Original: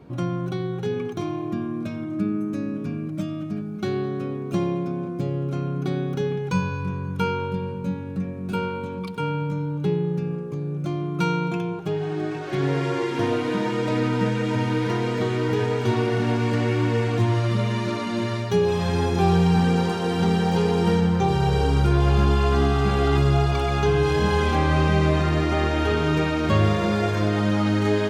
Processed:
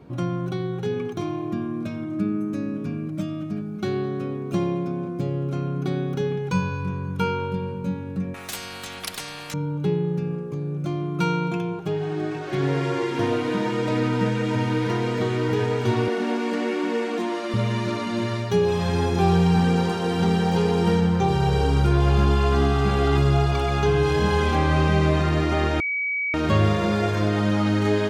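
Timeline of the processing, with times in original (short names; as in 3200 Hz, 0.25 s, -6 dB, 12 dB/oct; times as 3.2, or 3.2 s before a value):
8.34–9.54 spectral compressor 10:1
16.08–17.54 elliptic high-pass 200 Hz
25.8–26.34 bleep 2270 Hz -22.5 dBFS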